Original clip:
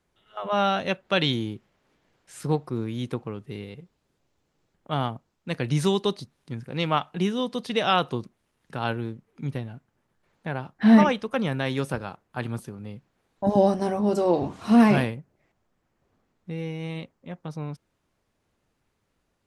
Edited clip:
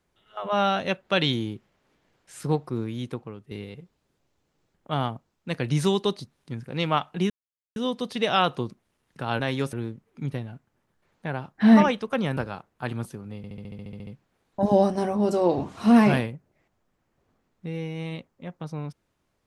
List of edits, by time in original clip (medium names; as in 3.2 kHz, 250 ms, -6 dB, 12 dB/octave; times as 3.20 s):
2.78–3.51 s: fade out, to -8 dB
7.30 s: insert silence 0.46 s
11.58–11.91 s: move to 8.94 s
12.91 s: stutter 0.07 s, 11 plays